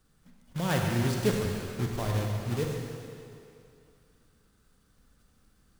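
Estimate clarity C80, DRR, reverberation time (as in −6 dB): 2.0 dB, 0.0 dB, 2.6 s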